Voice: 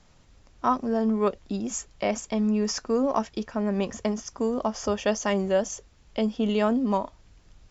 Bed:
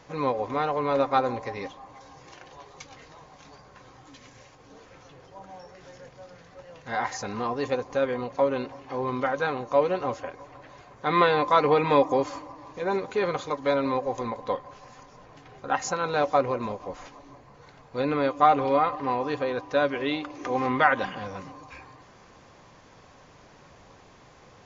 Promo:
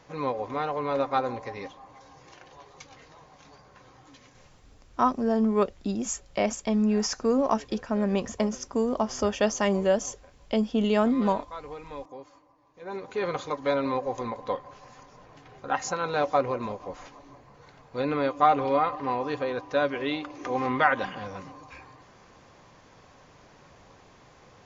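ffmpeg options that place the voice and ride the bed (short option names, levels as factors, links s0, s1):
-filter_complex "[0:a]adelay=4350,volume=1.06[s0];[1:a]volume=5.62,afade=t=out:st=4.12:d=0.67:silence=0.149624,afade=t=in:st=12.73:d=0.62:silence=0.125893[s1];[s0][s1]amix=inputs=2:normalize=0"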